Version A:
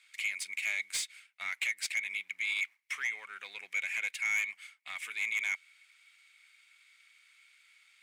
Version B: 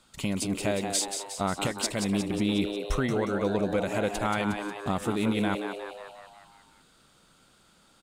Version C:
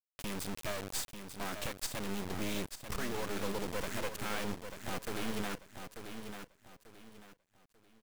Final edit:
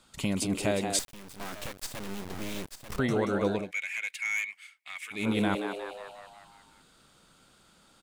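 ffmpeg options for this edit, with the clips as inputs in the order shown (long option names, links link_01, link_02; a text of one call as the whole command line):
ffmpeg -i take0.wav -i take1.wav -i take2.wav -filter_complex "[1:a]asplit=3[link_01][link_02][link_03];[link_01]atrim=end=0.992[link_04];[2:a]atrim=start=0.988:end=2.992[link_05];[link_02]atrim=start=2.988:end=3.72[link_06];[0:a]atrim=start=3.48:end=5.34[link_07];[link_03]atrim=start=5.1[link_08];[link_04][link_05]acrossfade=duration=0.004:curve1=hsin:curve2=hsin[link_09];[link_09][link_06]acrossfade=duration=0.004:curve1=hsin:curve2=hsin[link_10];[link_10][link_07]acrossfade=duration=0.24:curve1=tri:curve2=tri[link_11];[link_11][link_08]acrossfade=duration=0.24:curve1=tri:curve2=tri" out.wav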